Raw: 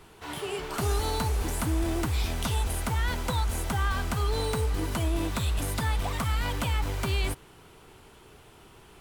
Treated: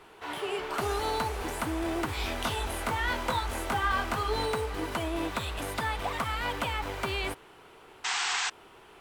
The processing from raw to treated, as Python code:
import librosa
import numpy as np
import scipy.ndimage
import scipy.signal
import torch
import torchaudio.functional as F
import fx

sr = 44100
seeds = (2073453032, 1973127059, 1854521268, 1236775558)

y = fx.doubler(x, sr, ms=21.0, db=-3.5, at=(2.06, 4.46))
y = fx.spec_paint(y, sr, seeds[0], shape='noise', start_s=8.04, length_s=0.46, low_hz=700.0, high_hz=8300.0, level_db=-29.0)
y = fx.bass_treble(y, sr, bass_db=-13, treble_db=-9)
y = F.gain(torch.from_numpy(y), 2.5).numpy()